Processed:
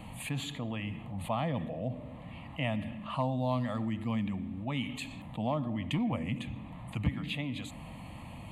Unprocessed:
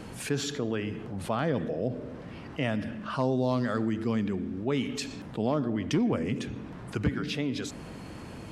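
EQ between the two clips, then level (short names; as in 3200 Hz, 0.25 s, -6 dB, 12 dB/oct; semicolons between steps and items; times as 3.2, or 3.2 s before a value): bell 5800 Hz -6.5 dB 0.21 oct; fixed phaser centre 1500 Hz, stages 6; 0.0 dB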